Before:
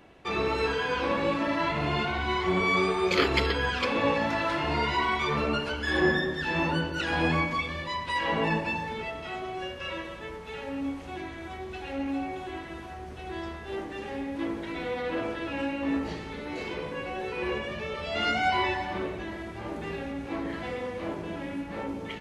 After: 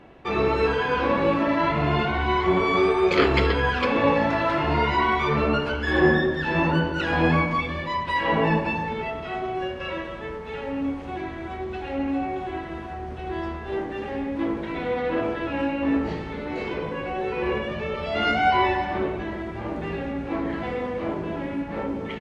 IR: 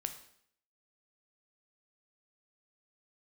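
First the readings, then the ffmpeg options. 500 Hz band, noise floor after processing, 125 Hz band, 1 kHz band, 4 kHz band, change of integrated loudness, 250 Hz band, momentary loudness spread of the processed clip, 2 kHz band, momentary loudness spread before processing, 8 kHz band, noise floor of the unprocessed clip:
+6.0 dB, -34 dBFS, +6.5 dB, +5.5 dB, +0.5 dB, +5.0 dB, +6.0 dB, 12 LU, +3.0 dB, 12 LU, no reading, -41 dBFS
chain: -filter_complex "[0:a]lowpass=f=1900:p=1,asplit=2[s0][s1];[s1]adelay=210,highpass=300,lowpass=3400,asoftclip=type=hard:threshold=0.141,volume=0.112[s2];[s0][s2]amix=inputs=2:normalize=0,asplit=2[s3][s4];[1:a]atrim=start_sample=2205,asetrate=61740,aresample=44100[s5];[s4][s5]afir=irnorm=-1:irlink=0,volume=2.24[s6];[s3][s6]amix=inputs=2:normalize=0,volume=0.841"

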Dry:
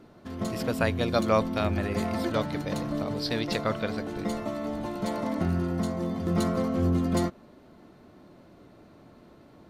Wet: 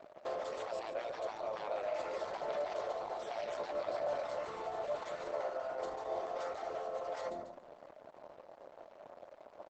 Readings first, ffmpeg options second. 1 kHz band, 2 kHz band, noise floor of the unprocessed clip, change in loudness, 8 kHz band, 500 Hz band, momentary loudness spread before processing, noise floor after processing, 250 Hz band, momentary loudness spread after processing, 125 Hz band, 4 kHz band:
-6.5 dB, -12.0 dB, -54 dBFS, -11.0 dB, under -10 dB, -6.5 dB, 7 LU, -58 dBFS, -27.5 dB, 17 LU, -33.0 dB, -14.5 dB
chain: -af "acontrast=86,aeval=exprs='sgn(val(0))*max(abs(val(0))-0.00708,0)':c=same,acompressor=threshold=0.02:ratio=3,aecho=1:1:143|286|429|572:0.251|0.105|0.0443|0.0186,crystalizer=i=8:c=0,afftfilt=real='re*lt(hypot(re,im),0.0631)':imag='im*lt(hypot(re,im),0.0631)':win_size=1024:overlap=0.75,bandpass=f=600:t=q:w=4.9:csg=0,volume=4.47" -ar 48000 -c:a libopus -b:a 12k

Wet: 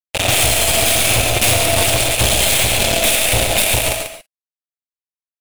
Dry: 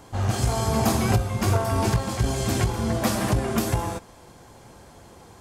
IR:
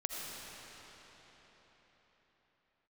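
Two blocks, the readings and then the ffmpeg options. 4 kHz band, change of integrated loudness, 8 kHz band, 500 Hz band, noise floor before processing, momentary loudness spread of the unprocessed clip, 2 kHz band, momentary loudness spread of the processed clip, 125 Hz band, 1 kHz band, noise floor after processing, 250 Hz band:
+19.0 dB, +10.5 dB, +18.0 dB, +8.0 dB, -49 dBFS, 4 LU, +16.0 dB, 3 LU, +0.5 dB, +5.5 dB, under -85 dBFS, -1.5 dB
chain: -filter_complex "[0:a]bandreject=f=50:t=h:w=6,bandreject=f=100:t=h:w=6,bandreject=f=150:t=h:w=6,bandreject=f=200:t=h:w=6,bandreject=f=250:t=h:w=6,aeval=exprs='val(0)+0.00562*(sin(2*PI*60*n/s)+sin(2*PI*2*60*n/s)/2+sin(2*PI*3*60*n/s)/3+sin(2*PI*4*60*n/s)/4+sin(2*PI*5*60*n/s)/5)':c=same,equalizer=f=3600:t=o:w=0.39:g=14,acrossover=split=130|3000[s0][s1][s2];[s1]acompressor=threshold=0.00501:ratio=2[s3];[s0][s3][s2]amix=inputs=3:normalize=0,acrusher=bits=3:mix=0:aa=0.5,equalizer=f=630:t=o:w=0.67:g=8,equalizer=f=2500:t=o:w=0.67:g=11,equalizer=f=10000:t=o:w=0.67:g=9,aeval=exprs='(tanh(63.1*val(0)+0.25)-tanh(0.25))/63.1':c=same,aecho=1:1:140:0.447[s4];[1:a]atrim=start_sample=2205,atrim=end_sample=6615[s5];[s4][s5]afir=irnorm=-1:irlink=0,alimiter=level_in=35.5:limit=0.891:release=50:level=0:latency=1,volume=0.596"

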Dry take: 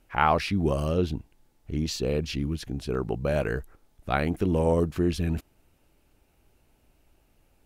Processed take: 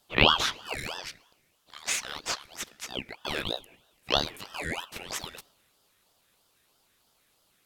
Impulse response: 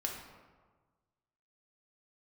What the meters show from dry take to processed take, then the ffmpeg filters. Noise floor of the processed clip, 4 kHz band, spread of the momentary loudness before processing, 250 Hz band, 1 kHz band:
-69 dBFS, +10.5 dB, 10 LU, -11.5 dB, -4.0 dB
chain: -filter_complex "[0:a]highpass=f=960:w=0.5412,highpass=f=960:w=1.3066,asplit=2[s0][s1];[1:a]atrim=start_sample=2205[s2];[s1][s2]afir=irnorm=-1:irlink=0,volume=0.141[s3];[s0][s3]amix=inputs=2:normalize=0,aeval=exprs='val(0)*sin(2*PI*1600*n/s+1600*0.4/3.1*sin(2*PI*3.1*n/s))':c=same,volume=2.24"

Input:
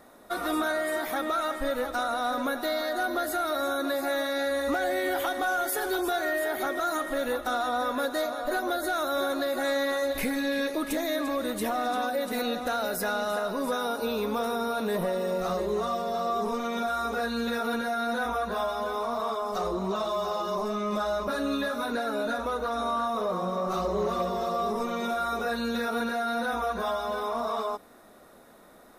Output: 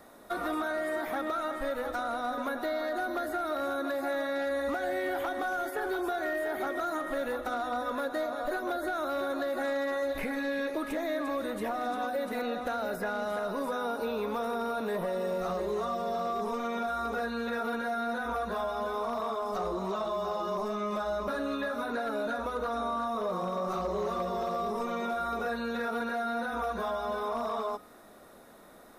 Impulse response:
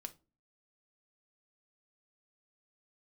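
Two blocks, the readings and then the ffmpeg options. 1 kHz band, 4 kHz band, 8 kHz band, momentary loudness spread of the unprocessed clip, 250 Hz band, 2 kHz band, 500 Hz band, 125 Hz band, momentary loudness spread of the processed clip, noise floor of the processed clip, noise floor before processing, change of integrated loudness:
-3.5 dB, -8.5 dB, -11.0 dB, 2 LU, -4.0 dB, -4.0 dB, -3.0 dB, -4.0 dB, 1 LU, -53 dBFS, -53 dBFS, -3.5 dB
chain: -filter_complex "[0:a]acrossover=split=420|2500[s0][s1][s2];[s0]acompressor=threshold=0.0141:ratio=4[s3];[s1]acompressor=threshold=0.0282:ratio=4[s4];[s2]acompressor=threshold=0.00224:ratio=4[s5];[s3][s4][s5]amix=inputs=3:normalize=0,bandreject=f=250.3:t=h:w=4,bandreject=f=500.6:t=h:w=4,bandreject=f=750.9:t=h:w=4,bandreject=f=1001.2:t=h:w=4,bandreject=f=1251.5:t=h:w=4,bandreject=f=1501.8:t=h:w=4,bandreject=f=1752.1:t=h:w=4,bandreject=f=2002.4:t=h:w=4,bandreject=f=2252.7:t=h:w=4,bandreject=f=2503:t=h:w=4,bandreject=f=2753.3:t=h:w=4,bandreject=f=3003.6:t=h:w=4,bandreject=f=3253.9:t=h:w=4,bandreject=f=3504.2:t=h:w=4,bandreject=f=3754.5:t=h:w=4,bandreject=f=4004.8:t=h:w=4,bandreject=f=4255.1:t=h:w=4,bandreject=f=4505.4:t=h:w=4,bandreject=f=4755.7:t=h:w=4,bandreject=f=5006:t=h:w=4,bandreject=f=5256.3:t=h:w=4,bandreject=f=5506.6:t=h:w=4,bandreject=f=5756.9:t=h:w=4,bandreject=f=6007.2:t=h:w=4,bandreject=f=6257.5:t=h:w=4,bandreject=f=6507.8:t=h:w=4,bandreject=f=6758.1:t=h:w=4,bandreject=f=7008.4:t=h:w=4,bandreject=f=7258.7:t=h:w=4,bandreject=f=7509:t=h:w=4,bandreject=f=7759.3:t=h:w=4,bandreject=f=8009.6:t=h:w=4,bandreject=f=8259.9:t=h:w=4,volume=17.8,asoftclip=hard,volume=0.0562"

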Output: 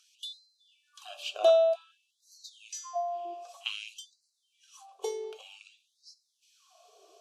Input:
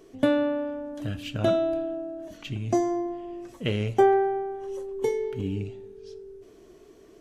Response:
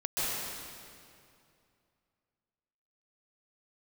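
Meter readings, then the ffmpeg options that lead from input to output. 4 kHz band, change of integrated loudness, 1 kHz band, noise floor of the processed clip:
+1.5 dB, -3.5 dB, -7.0 dB, -78 dBFS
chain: -filter_complex "[0:a]aexciter=amount=10.1:drive=5.8:freq=3400,asplit=3[s0][s1][s2];[s0]bandpass=f=730:t=q:w=8,volume=1[s3];[s1]bandpass=f=1090:t=q:w=8,volume=0.501[s4];[s2]bandpass=f=2440:t=q:w=8,volume=0.355[s5];[s3][s4][s5]amix=inputs=3:normalize=0,afftfilt=real='re*gte(b*sr/1024,340*pow(4000/340,0.5+0.5*sin(2*PI*0.53*pts/sr)))':imag='im*gte(b*sr/1024,340*pow(4000/340,0.5+0.5*sin(2*PI*0.53*pts/sr)))':win_size=1024:overlap=0.75,volume=2.51"

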